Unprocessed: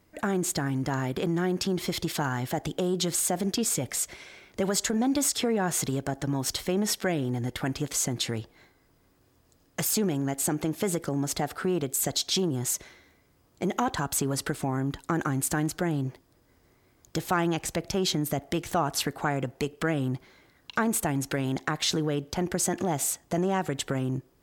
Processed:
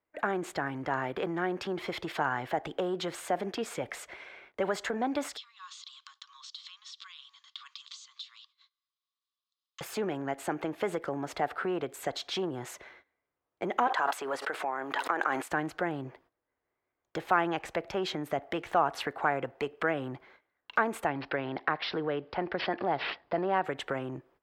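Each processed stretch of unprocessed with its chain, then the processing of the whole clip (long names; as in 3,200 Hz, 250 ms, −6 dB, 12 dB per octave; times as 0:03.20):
0:05.37–0:09.81: drawn EQ curve 180 Hz 0 dB, 300 Hz −17 dB, 470 Hz +3 dB, 700 Hz −5 dB, 1,000 Hz +3 dB, 1,600 Hz −18 dB, 2,500 Hz −4 dB, 3,700 Hz +14 dB, 7,400 Hz +6 dB, 12,000 Hz −29 dB + downward compressor 16 to 1, threshold −29 dBFS + Chebyshev high-pass with heavy ripple 1,100 Hz, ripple 3 dB
0:13.87–0:15.51: high-pass filter 490 Hz + background raised ahead of every attack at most 21 dB per second
0:21.07–0:23.64: high-shelf EQ 6,600 Hz −6 dB + bad sample-rate conversion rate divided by 4×, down none, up filtered
whole clip: noise gate −53 dBFS, range −18 dB; three-way crossover with the lows and the highs turned down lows −15 dB, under 410 Hz, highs −22 dB, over 2,900 Hz; level +2 dB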